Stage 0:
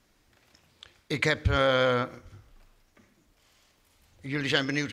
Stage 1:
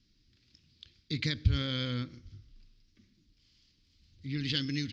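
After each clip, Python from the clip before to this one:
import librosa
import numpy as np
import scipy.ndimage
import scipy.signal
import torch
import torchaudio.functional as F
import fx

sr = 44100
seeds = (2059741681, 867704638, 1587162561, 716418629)

y = fx.curve_eq(x, sr, hz=(140.0, 300.0, 710.0, 4900.0, 9600.0), db=(0, -4, -29, 3, -29))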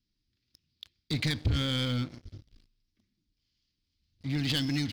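y = fx.leveller(x, sr, passes=3)
y = F.gain(torch.from_numpy(y), -6.0).numpy()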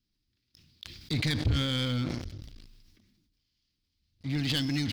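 y = fx.sustainer(x, sr, db_per_s=35.0)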